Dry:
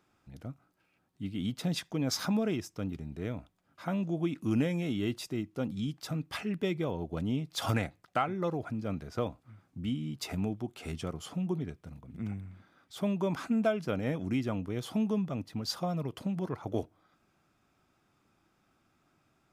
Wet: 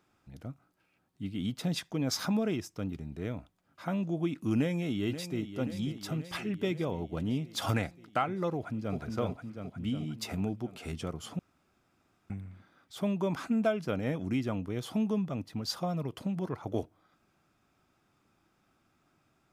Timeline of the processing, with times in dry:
4.57–5.6 echo throw 0.53 s, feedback 70%, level -11 dB
8.56–8.97 echo throw 0.36 s, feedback 65%, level -3 dB
11.39–12.3 room tone

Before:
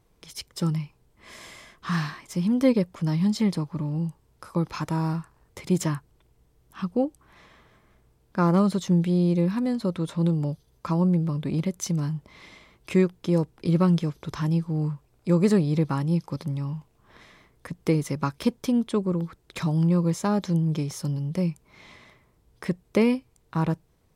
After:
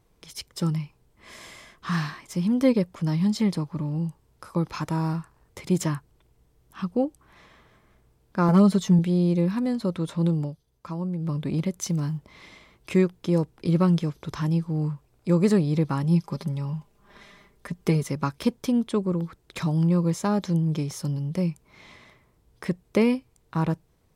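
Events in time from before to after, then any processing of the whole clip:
8.48–8.99 comb 4.6 ms, depth 73%
10.4–11.3 dip -8 dB, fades 0.12 s
11.83–12.98 short-mantissa float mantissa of 6-bit
16.03–18.03 comb 5 ms

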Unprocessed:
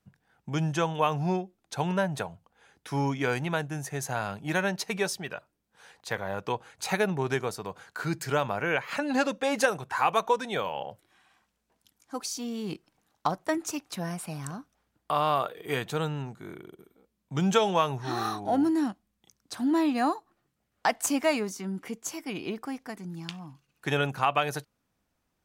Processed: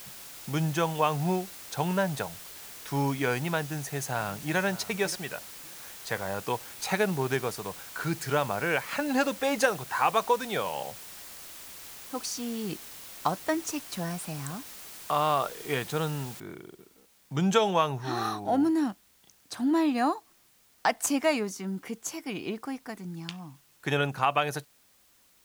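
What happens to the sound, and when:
3.61–4.57 echo throw 0.58 s, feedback 20%, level -16 dB
16.4 noise floor step -45 dB -63 dB

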